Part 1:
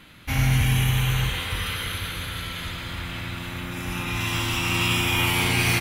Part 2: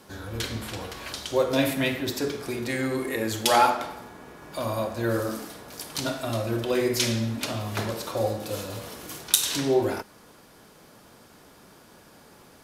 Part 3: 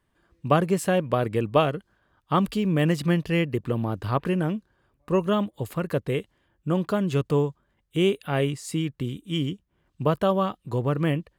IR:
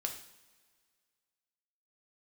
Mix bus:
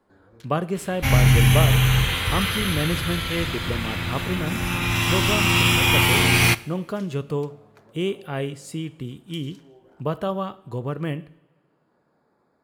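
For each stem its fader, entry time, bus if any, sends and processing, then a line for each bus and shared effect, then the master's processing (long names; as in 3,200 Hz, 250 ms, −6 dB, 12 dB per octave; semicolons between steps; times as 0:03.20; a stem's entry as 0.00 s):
+2.5 dB, 0.75 s, send −11 dB, no processing
−13.0 dB, 0.00 s, send −18 dB, adaptive Wiener filter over 15 samples; high-pass filter 180 Hz 6 dB per octave; downward compressor, threshold −31 dBFS, peak gain reduction 16 dB; automatic ducking −8 dB, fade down 0.75 s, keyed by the third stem
−6.5 dB, 0.00 s, send −7 dB, no processing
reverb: on, pre-delay 3 ms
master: no processing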